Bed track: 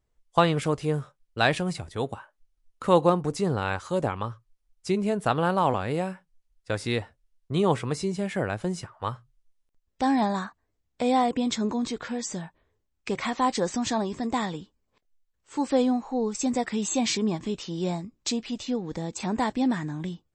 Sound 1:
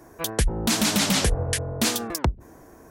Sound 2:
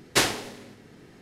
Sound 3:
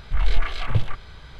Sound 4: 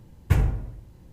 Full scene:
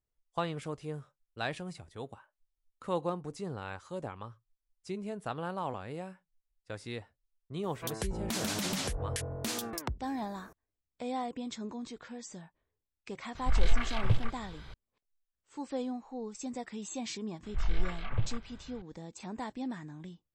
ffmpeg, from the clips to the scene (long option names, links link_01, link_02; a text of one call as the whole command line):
ffmpeg -i bed.wav -i cue0.wav -i cue1.wav -i cue2.wav -filter_complex "[3:a]asplit=2[link_01][link_02];[0:a]volume=-13dB[link_03];[1:a]acompressor=threshold=-22dB:ratio=6:attack=3.2:release=140:knee=1:detection=peak[link_04];[link_02]lowpass=2900[link_05];[link_04]atrim=end=2.9,asetpts=PTS-STARTPTS,volume=-8dB,afade=type=in:duration=0.004:curve=hsin,afade=type=out:start_time=2.896:duration=0.004:curve=hsin,adelay=7630[link_06];[link_01]atrim=end=1.39,asetpts=PTS-STARTPTS,volume=-5.5dB,afade=type=in:duration=0.004:curve=hsin,afade=type=out:start_time=1.386:duration=0.004:curve=hsin,adelay=13350[link_07];[link_05]atrim=end=1.39,asetpts=PTS-STARTPTS,volume=-10dB,afade=type=in:duration=0.004:curve=hsin,afade=type=out:start_time=1.386:duration=0.004:curve=hsin,adelay=17430[link_08];[link_03][link_06][link_07][link_08]amix=inputs=4:normalize=0" out.wav